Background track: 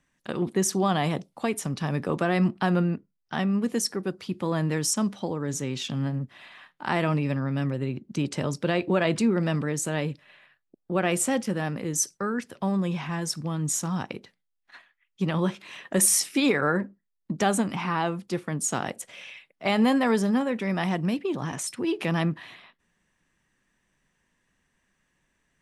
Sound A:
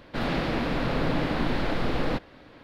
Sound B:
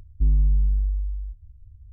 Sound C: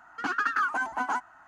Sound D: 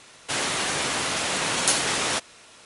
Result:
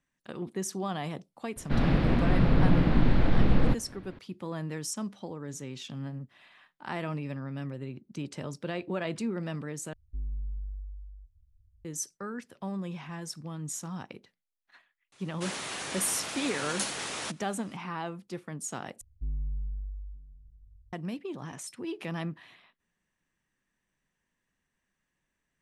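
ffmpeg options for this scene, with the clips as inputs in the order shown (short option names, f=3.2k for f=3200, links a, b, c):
-filter_complex "[2:a]asplit=2[a][b];[0:a]volume=-9.5dB[c];[1:a]bass=f=250:g=12,treble=f=4k:g=-6[d];[a]equalizer=f=150:t=o:w=0.77:g=-7[e];[4:a]highpass=50[f];[b]aecho=1:1:924:0.0841[g];[c]asplit=3[h][i][j];[h]atrim=end=9.934[k];[e]atrim=end=1.92,asetpts=PTS-STARTPTS,volume=-16dB[l];[i]atrim=start=11.846:end=19.014[m];[g]atrim=end=1.92,asetpts=PTS-STARTPTS,volume=-14.5dB[n];[j]atrim=start=20.926[o];[d]atrim=end=2.63,asetpts=PTS-STARTPTS,volume=-4dB,afade=t=in:d=0.004:c=hsin,afade=t=out:st=2.626:d=0.004:c=hsin,adelay=1560[p];[f]atrim=end=2.65,asetpts=PTS-STARTPTS,volume=-11dB,afade=t=in:d=0.004:c=hsin,afade=t=out:st=2.646:d=0.004:c=hsin,adelay=15120[q];[k][l]acrossfade=d=0.004:c1=hsin:c2=hsin[r];[r][m]acrossfade=d=0.004:c1=hsin:c2=hsin[s];[s][n]acrossfade=d=0.004:c1=hsin:c2=hsin[t];[t][o]acrossfade=d=0.004:c1=hsin:c2=hsin[u];[u][p][q]amix=inputs=3:normalize=0"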